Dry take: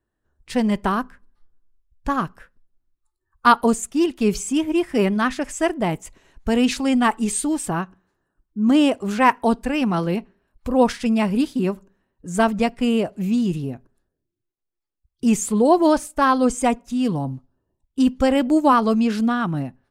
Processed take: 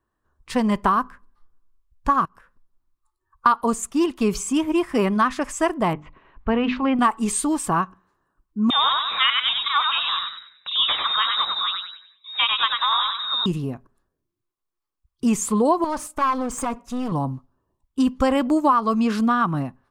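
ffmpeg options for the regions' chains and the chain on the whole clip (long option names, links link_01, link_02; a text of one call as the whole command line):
ffmpeg -i in.wav -filter_complex "[0:a]asettb=1/sr,asplit=3[link_01][link_02][link_03];[link_01]atrim=end=2.254[link_04];[link_02]atrim=start=2.25:end=3.46,asetpts=PTS-STARTPTS,afade=type=in:duration=0.004:curve=qsin,afade=type=out:start_time=1.206:duration=0.004:curve=qsin,equalizer=frequency=930:width=8:gain=3,acompressor=threshold=-49dB:ratio=12:attack=3.2:release=140:knee=1:detection=peak[link_05];[link_03]atrim=start=3.456[link_06];[link_04][link_05]acrossfade=duration=0.004:curve1=hsin:curve2=qsin[link_07];[link_07][link_06]acrossfade=duration=0.004:curve1=qsin:curve2=hsin,asettb=1/sr,asplit=3[link_08][link_09][link_10];[link_08]atrim=end=5.934[link_11];[link_09]atrim=start=5.93:end=6.99,asetpts=PTS-STARTPTS,afade=type=in:duration=0.004:curve=qsin,afade=type=out:start_time=1.056:duration=0.004:curve=qsin,lowpass=frequency=2900:width=0.5412,lowpass=frequency=2900:width=1.3066,bandreject=frequency=50:width_type=h:width=6,bandreject=frequency=100:width_type=h:width=6,bandreject=frequency=150:width_type=h:width=6,bandreject=frequency=200:width_type=h:width=6,bandreject=frequency=250:width_type=h:width=6,bandreject=frequency=300:width_type=h:width=6[link_12];[link_10]atrim=start=6.986[link_13];[link_11][link_12]acrossfade=duration=0.004:curve1=hsin:curve2=qsin[link_14];[link_14][link_13]acrossfade=duration=0.004:curve1=qsin:curve2=hsin,asettb=1/sr,asplit=3[link_15][link_16][link_17];[link_15]atrim=end=8.704[link_18];[link_16]atrim=start=8.7:end=13.46,asetpts=PTS-STARTPTS,afade=type=in:duration=0.004:curve=qsin,afade=type=out:start_time=4.756:duration=0.004:curve=qsin,tiltshelf=frequency=1400:gain=-7,asplit=6[link_19][link_20][link_21][link_22][link_23][link_24];[link_20]adelay=95,afreqshift=-97,volume=-4dB[link_25];[link_21]adelay=190,afreqshift=-194,volume=-11.7dB[link_26];[link_22]adelay=285,afreqshift=-291,volume=-19.5dB[link_27];[link_23]adelay=380,afreqshift=-388,volume=-27.2dB[link_28];[link_24]adelay=475,afreqshift=-485,volume=-35dB[link_29];[link_19][link_25][link_26][link_27][link_28][link_29]amix=inputs=6:normalize=0,atrim=end_sample=209916,lowpass=frequency=3300:width_type=q:width=0.5098,lowpass=frequency=3300:width_type=q:width=0.6013,lowpass=frequency=3300:width_type=q:width=0.9,lowpass=frequency=3300:width_type=q:width=2.563,afreqshift=-3900[link_30];[link_17]atrim=start=13.456[link_31];[link_18][link_30]acrossfade=duration=0.004:curve1=hsin:curve2=qsin[link_32];[link_32][link_31]acrossfade=duration=0.004:curve1=qsin:curve2=hsin,asettb=1/sr,asplit=3[link_33][link_34][link_35];[link_33]atrim=end=15.844[link_36];[link_34]atrim=start=15.84:end=17.12,asetpts=PTS-STARTPTS,afade=type=in:duration=0.004:curve=qsin,afade=type=out:start_time=1.276:duration=0.004:curve=qsin,acompressor=threshold=-20dB:ratio=16:attack=3.2:release=140:knee=1:detection=peak,aeval=exprs='clip(val(0),-1,0.0316)':channel_layout=same[link_37];[link_35]atrim=start=17.116[link_38];[link_36][link_37]acrossfade=duration=0.004:curve1=hsin:curve2=qsin[link_39];[link_39][link_38]acrossfade=duration=0.004:curve1=qsin:curve2=hsin,equalizer=frequency=1100:width=2.9:gain=12,acompressor=threshold=-15dB:ratio=6" out.wav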